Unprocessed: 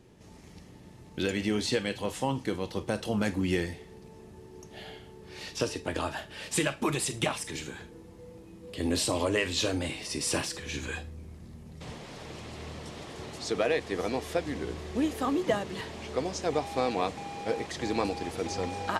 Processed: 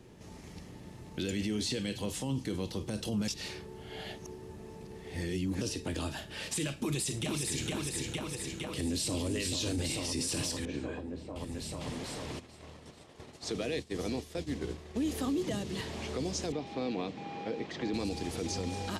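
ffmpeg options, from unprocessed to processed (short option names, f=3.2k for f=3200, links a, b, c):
-filter_complex "[0:a]asplit=2[a][b];[b]afade=t=in:st=6.82:d=0.01,afade=t=out:st=7.67:d=0.01,aecho=0:1:460|920|1380|1840|2300|2760|3220|3680|4140|4600:0.562341|0.365522|0.237589|0.154433|0.100381|0.0652479|0.0424112|0.0275673|0.0179187|0.0116472[c];[a][c]amix=inputs=2:normalize=0,asplit=2[d][e];[e]afade=t=in:st=8.37:d=0.01,afade=t=out:st=9.24:d=0.01,aecho=0:1:440|880|1320|1760|2200|2640|3080|3520|3960|4400|4840|5280:0.473151|0.378521|0.302817|0.242253|0.193803|0.155042|0.124034|0.099227|0.0793816|0.0635053|0.0508042|0.0406434[f];[d][f]amix=inputs=2:normalize=0,asettb=1/sr,asplit=3[g][h][i];[g]atrim=end=10.654[j];[h]atrim=start=10.65:end=11.36,asetpts=PTS-STARTPTS,afade=t=in:d=0.004:c=qsin,afade=t=out:st=0.706:d=0.004:c=qsin,bandpass=f=370:t=q:w=0.55[k];[i]atrim=start=11.356[l];[j][k]acrossfade=d=0.004:c1=hsin:c2=qsin[m];[m][l]acrossfade=d=0.004:c1=qsin:c2=hsin,asplit=3[n][o][p];[n]afade=t=out:st=12.38:d=0.02[q];[o]agate=range=-33dB:threshold=-32dB:ratio=3:release=100:detection=peak,afade=t=in:st=12.38:d=0.02,afade=t=out:st=15.01:d=0.02[r];[p]afade=t=in:st=15.01:d=0.02[s];[q][r][s]amix=inputs=3:normalize=0,asettb=1/sr,asplit=3[t][u][v];[t]atrim=end=16.524[w];[u]atrim=start=16.52:end=17.94,asetpts=PTS-STARTPTS,afade=t=in:d=0.004:c=qsin,afade=t=out:st=1.416:d=0.004:c=qsin,highpass=160,lowpass=3k[x];[v]atrim=start=17.936[y];[w][x]acrossfade=d=0.004:c1=hsin:c2=qsin[z];[z][y]acrossfade=d=0.004:c1=qsin:c2=hsin,asplit=3[aa][ab][ac];[aa]atrim=end=3.282[ad];[ab]atrim=start=3.278:end=5.612,asetpts=PTS-STARTPTS,areverse[ae];[ac]atrim=start=5.608[af];[ad][ae]acrossfade=d=0.004:c1=hsin:c2=hsin[ag];[ag][af]acrossfade=d=0.004:c1=hsin:c2=hsin,acrossover=split=370|3000[ah][ai][aj];[ai]acompressor=threshold=-44dB:ratio=6[ak];[ah][ak][aj]amix=inputs=3:normalize=0,alimiter=level_in=3.5dB:limit=-24dB:level=0:latency=1:release=19,volume=-3.5dB,volume=2.5dB"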